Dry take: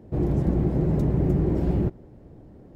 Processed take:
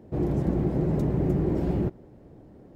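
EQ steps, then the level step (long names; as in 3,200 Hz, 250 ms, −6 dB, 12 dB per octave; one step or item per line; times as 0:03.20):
low-shelf EQ 120 Hz −7 dB
0.0 dB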